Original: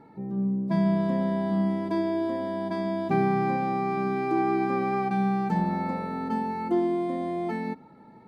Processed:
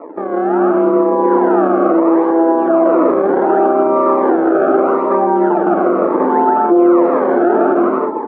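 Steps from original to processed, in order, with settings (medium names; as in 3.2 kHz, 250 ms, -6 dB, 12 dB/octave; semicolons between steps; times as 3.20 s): AM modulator 160 Hz, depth 70%; decimation with a swept rate 27×, swing 160% 0.72 Hz; bouncing-ball echo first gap 160 ms, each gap 0.6×, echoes 5; compression 12:1, threshold -37 dBFS, peak gain reduction 17 dB; elliptic band-pass 320–1300 Hz, stop band 80 dB; level rider gain up to 10 dB; loudness maximiser +28.5 dB; Shepard-style phaser falling 1 Hz; trim -1 dB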